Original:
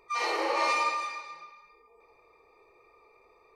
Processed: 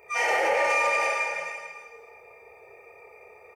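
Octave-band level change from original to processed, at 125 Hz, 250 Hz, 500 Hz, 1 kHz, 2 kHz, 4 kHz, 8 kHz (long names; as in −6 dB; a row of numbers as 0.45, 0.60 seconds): can't be measured, −4.0 dB, +7.5 dB, +2.5 dB, +8.5 dB, −0.5 dB, +5.5 dB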